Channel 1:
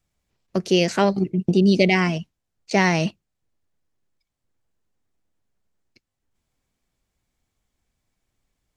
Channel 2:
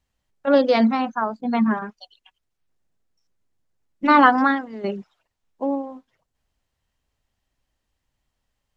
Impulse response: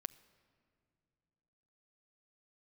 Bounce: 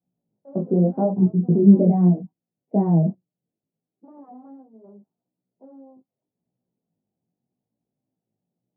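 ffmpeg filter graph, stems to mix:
-filter_complex "[0:a]aemphasis=mode=reproduction:type=riaa,flanger=delay=16.5:depth=2.7:speed=0.93,volume=1dB[a];[1:a]aeval=exprs='(tanh(22.4*val(0)+0.4)-tanh(0.4))/22.4':c=same,volume=-11dB[b];[a][b]amix=inputs=2:normalize=0,flanger=delay=15.5:depth=7.5:speed=0.75,asuperpass=centerf=350:order=8:qfactor=0.53"

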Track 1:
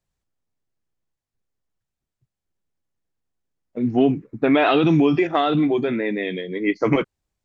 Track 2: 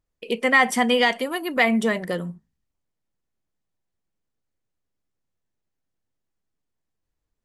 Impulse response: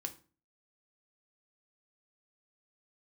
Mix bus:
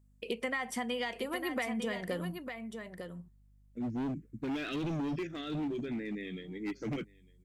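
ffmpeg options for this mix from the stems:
-filter_complex "[0:a]firequalizer=gain_entry='entry(220,0);entry(830,-26);entry(1500,-7);entry(4100,-4);entry(8100,12)':delay=0.05:min_phase=1,asoftclip=type=hard:threshold=-22dB,volume=-10dB,asplit=2[a][b];[b]volume=-24dB[c];[1:a]acompressor=threshold=-27dB:ratio=16,aeval=exprs='val(0)+0.00112*(sin(2*PI*50*n/s)+sin(2*PI*2*50*n/s)/2+sin(2*PI*3*50*n/s)/3+sin(2*PI*4*50*n/s)/4+sin(2*PI*5*50*n/s)/5)':c=same,volume=-4.5dB,asplit=2[d][e];[e]volume=-7.5dB[f];[c][f]amix=inputs=2:normalize=0,aecho=0:1:902:1[g];[a][d][g]amix=inputs=3:normalize=0"

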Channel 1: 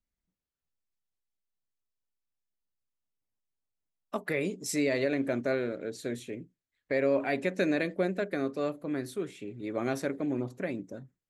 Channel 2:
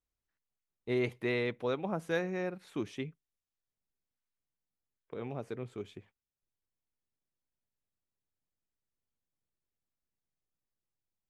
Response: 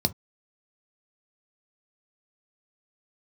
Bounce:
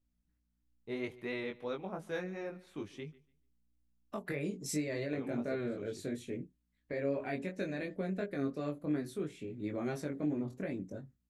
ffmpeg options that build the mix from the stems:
-filter_complex "[0:a]lowshelf=f=190:g=11.5,alimiter=limit=-22dB:level=0:latency=1:release=242,volume=-1.5dB[a];[1:a]aeval=exprs='val(0)+0.000224*(sin(2*PI*60*n/s)+sin(2*PI*2*60*n/s)/2+sin(2*PI*3*60*n/s)/3+sin(2*PI*4*60*n/s)/4+sin(2*PI*5*60*n/s)/5)':c=same,volume=-3dB,asplit=2[b][c];[c]volume=-21.5dB,aecho=0:1:145|290|435|580:1|0.23|0.0529|0.0122[d];[a][b][d]amix=inputs=3:normalize=0,flanger=delay=19.5:depth=2.1:speed=2.9"

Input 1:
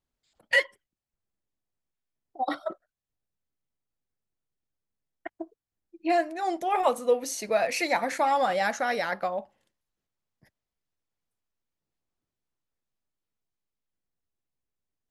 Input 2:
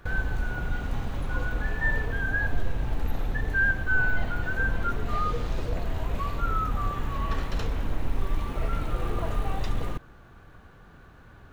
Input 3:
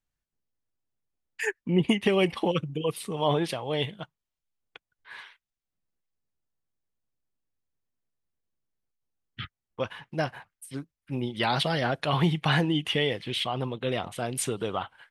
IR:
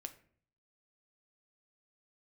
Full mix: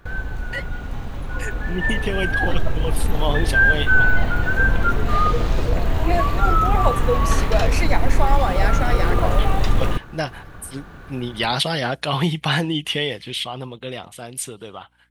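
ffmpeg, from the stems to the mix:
-filter_complex "[0:a]volume=-8dB[a];[1:a]volume=0.5dB[b];[2:a]aeval=exprs='val(0)+0.00112*(sin(2*PI*60*n/s)+sin(2*PI*2*60*n/s)/2+sin(2*PI*3*60*n/s)/3+sin(2*PI*4*60*n/s)/4+sin(2*PI*5*60*n/s)/5)':c=same,highshelf=f=3.9k:g=9,volume=-7dB[c];[a][b][c]amix=inputs=3:normalize=0,dynaudnorm=f=440:g=11:m=11.5dB"

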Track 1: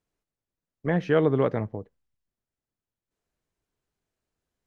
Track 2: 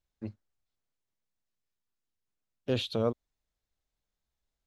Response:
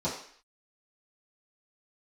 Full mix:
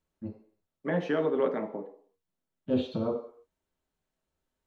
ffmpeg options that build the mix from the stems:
-filter_complex "[0:a]highpass=f=240:w=0.5412,highpass=f=240:w=1.3066,alimiter=limit=-17.5dB:level=0:latency=1:release=204,volume=-1.5dB,asplit=2[a][b];[b]volume=-12dB[c];[1:a]highshelf=f=3k:g=-11,volume=-7dB,asplit=2[d][e];[e]volume=-3.5dB[f];[2:a]atrim=start_sample=2205[g];[c][f]amix=inputs=2:normalize=0[h];[h][g]afir=irnorm=-1:irlink=0[i];[a][d][i]amix=inputs=3:normalize=0"

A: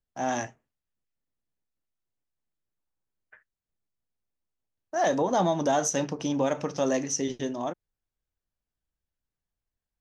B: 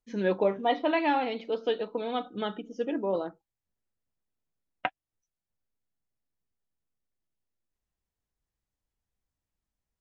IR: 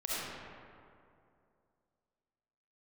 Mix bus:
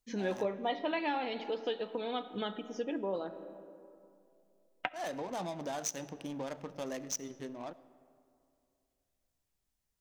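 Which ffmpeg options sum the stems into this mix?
-filter_complex "[0:a]highshelf=f=3.6k:g=8,adynamicsmooth=sensitivity=3.5:basefreq=620,volume=-12dB,asplit=2[a][b];[b]volume=-22.5dB[c];[1:a]volume=-0.5dB,asplit=2[d][e];[e]volume=-20.5dB[f];[2:a]atrim=start_sample=2205[g];[c][f]amix=inputs=2:normalize=0[h];[h][g]afir=irnorm=-1:irlink=0[i];[a][d][i]amix=inputs=3:normalize=0,highshelf=f=3.1k:g=7.5,acompressor=threshold=-37dB:ratio=2"

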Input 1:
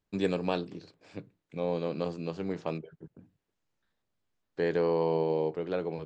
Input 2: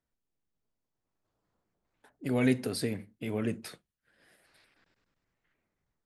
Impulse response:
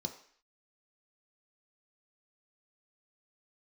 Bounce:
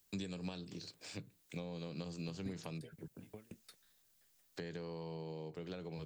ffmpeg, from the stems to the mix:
-filter_complex "[0:a]acompressor=threshold=-30dB:ratio=6,crystalizer=i=3:c=0,volume=-0.5dB[a];[1:a]aeval=exprs='val(0)*pow(10,-37*if(lt(mod(5.7*n/s,1),2*abs(5.7)/1000),1-mod(5.7*n/s,1)/(2*abs(5.7)/1000),(mod(5.7*n/s,1)-2*abs(5.7)/1000)/(1-2*abs(5.7)/1000))/20)':c=same,volume=-12.5dB[b];[a][b]amix=inputs=2:normalize=0,highshelf=f=2.5k:g=9,acrossover=split=180[c][d];[d]acompressor=threshold=-47dB:ratio=5[e];[c][e]amix=inputs=2:normalize=0"

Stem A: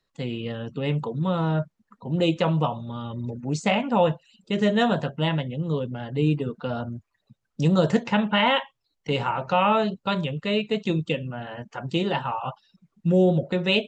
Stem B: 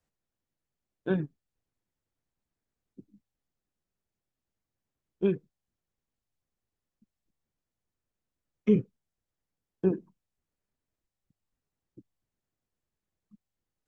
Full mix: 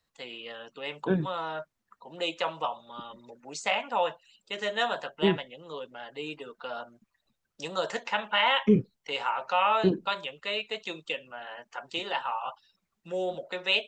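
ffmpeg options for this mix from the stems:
-filter_complex "[0:a]highpass=740,volume=-1.5dB[a];[1:a]volume=1.5dB[b];[a][b]amix=inputs=2:normalize=0"

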